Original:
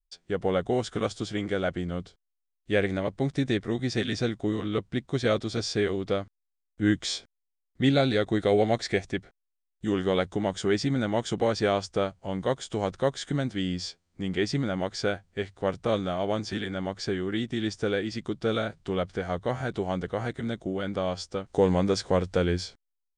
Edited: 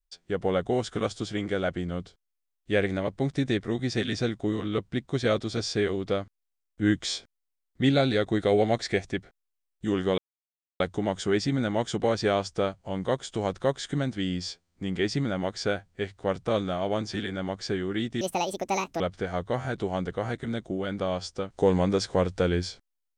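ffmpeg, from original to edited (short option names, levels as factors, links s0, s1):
-filter_complex "[0:a]asplit=4[s0][s1][s2][s3];[s0]atrim=end=10.18,asetpts=PTS-STARTPTS,afade=t=out:st=10.176:d=0.004:c=hsin,apad=pad_dur=0.62[s4];[s1]atrim=start=10.18:end=17.594,asetpts=PTS-STARTPTS,afade=t=in:d=0.004:c=hsin[s5];[s2]atrim=start=17.59:end=18.96,asetpts=PTS-STARTPTS,asetrate=76293,aresample=44100,atrim=end_sample=34923,asetpts=PTS-STARTPTS[s6];[s3]atrim=start=18.956[s7];[s4][s5]concat=n=2:v=0:a=1[s8];[s8][s6]acrossfade=d=0.004:c1=hsin:c2=hsin[s9];[s9][s7]acrossfade=d=0.004:c1=hsin:c2=hsin"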